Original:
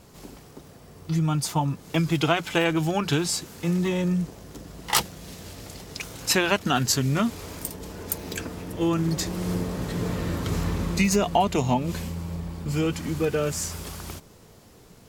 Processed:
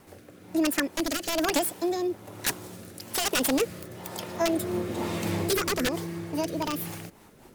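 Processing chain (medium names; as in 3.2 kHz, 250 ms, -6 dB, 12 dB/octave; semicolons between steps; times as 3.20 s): integer overflow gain 15 dB; speed mistake 7.5 ips tape played at 15 ips; rotary cabinet horn 1.1 Hz, later 6.3 Hz, at 6.68 s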